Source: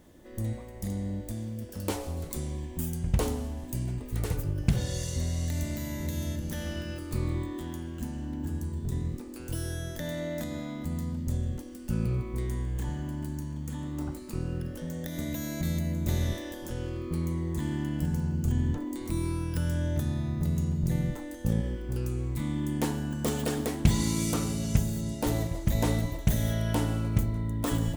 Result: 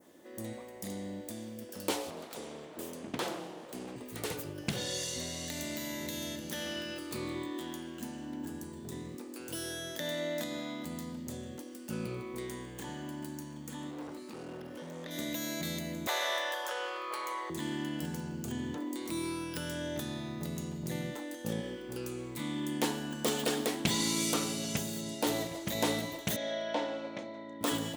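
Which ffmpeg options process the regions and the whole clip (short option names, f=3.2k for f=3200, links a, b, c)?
-filter_complex "[0:a]asettb=1/sr,asplit=3[a][b][c];[a]atrim=end=2.104[d];[b]atrim=start=2.1:end=3.96,asetpts=PTS-STARTPTS,afade=t=in:d=0.004:c=qsin,afade=t=out:st=1.856:d=0.004:c=qsin,highpass=f=69:p=1,highshelf=f=6.2k:g=-10,aeval=exprs='abs(val(0))':c=same[e];[c]atrim=start=3.956[f];[d][e]acrossfade=d=0.004:c1=hsin:c2=qsin[g];[g][f]acrossfade=d=0.004:c1=qsin:c2=hsin,asettb=1/sr,asplit=3[h][i][j];[h]atrim=end=13.914[k];[i]atrim=start=13.91:end=15.11,asetpts=PTS-STARTPTS,afade=t=in:d=0.004:c=qsin,afade=t=out:st=1.196:d=0.004:c=qsin,acrossover=split=4800[l][m];[m]acompressor=threshold=-58dB:ratio=4:attack=1:release=60[n];[l][n]amix=inputs=2:normalize=0,asoftclip=type=hard:threshold=-35.5dB[o];[j]atrim=start=15.106[p];[k][o]acrossfade=d=0.004:c1=hsin:c2=qsin[q];[q][p]acrossfade=d=0.004:c1=qsin:c2=hsin,asettb=1/sr,asplit=3[r][s][t];[r]atrim=end=16.074[u];[s]atrim=start=16.07:end=17.5,asetpts=PTS-STARTPTS,afade=t=in:d=0.004:c=qsin,afade=t=out:st=1.426:d=0.004:c=qsin,highpass=f=530:w=0.5412,highpass=f=530:w=1.3066,equalizer=f=1.1k:t=o:w=2:g=14[v];[t]atrim=start=17.496[w];[u][v]acrossfade=d=0.004:c1=hsin:c2=qsin[x];[x][w]acrossfade=d=0.004:c1=qsin:c2=hsin,asettb=1/sr,asplit=3[y][z][aa];[y]atrim=end=26.364[ab];[z]atrim=start=26.36:end=27.61,asetpts=PTS-STARTPTS,afade=t=in:d=0.004:c=qsin,afade=t=out:st=1.246:d=0.004:c=qsin,highpass=320,equalizer=f=400:t=q:w=4:g=-9,equalizer=f=570:t=q:w=4:g=8,equalizer=f=1.3k:t=q:w=4:g=-8,equalizer=f=2.9k:t=q:w=4:g=-8,equalizer=f=4.7k:t=q:w=4:g=-7,lowpass=f=4.8k:w=0.5412,lowpass=f=4.8k:w=1.3066,asplit=2[ac][ad];[ad]adelay=33,volume=-14dB[ae];[ac][ae]amix=inputs=2:normalize=0,atrim=end_sample=55125[af];[aa]atrim=start=27.606[ag];[ab][af]acrossfade=d=0.004:c1=hsin:c2=qsin[ah];[ah][ag]acrossfade=d=0.004:c1=qsin:c2=hsin,highpass=280,adynamicequalizer=threshold=0.00158:dfrequency=3500:dqfactor=1.1:tfrequency=3500:tqfactor=1.1:attack=5:release=100:ratio=0.375:range=3:mode=boostabove:tftype=bell"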